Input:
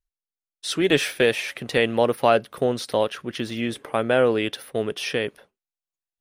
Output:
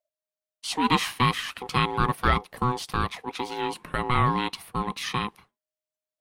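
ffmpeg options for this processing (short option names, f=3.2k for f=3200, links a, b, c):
-af "bandreject=f=560:w=12,aeval=exprs='val(0)*sin(2*PI*620*n/s)':c=same"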